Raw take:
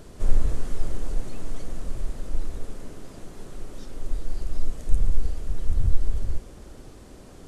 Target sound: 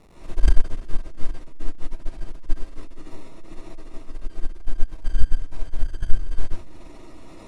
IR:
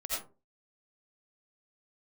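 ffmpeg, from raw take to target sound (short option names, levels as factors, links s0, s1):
-filter_complex "[0:a]aeval=exprs='val(0)+0.5*0.0282*sgn(val(0))':c=same,acrusher=samples=28:mix=1:aa=0.000001[s0];[1:a]atrim=start_sample=2205,asetrate=22050,aresample=44100[s1];[s0][s1]afir=irnorm=-1:irlink=0,aeval=exprs='3.55*(cos(1*acos(clip(val(0)/3.55,-1,1)))-cos(1*PI/2))+0.251*(cos(3*acos(clip(val(0)/3.55,-1,1)))-cos(3*PI/2))+1.78*(cos(4*acos(clip(val(0)/3.55,-1,1)))-cos(4*PI/2))+0.141*(cos(5*acos(clip(val(0)/3.55,-1,1)))-cos(5*PI/2))+0.224*(cos(6*acos(clip(val(0)/3.55,-1,1)))-cos(6*PI/2))':c=same,volume=0.15"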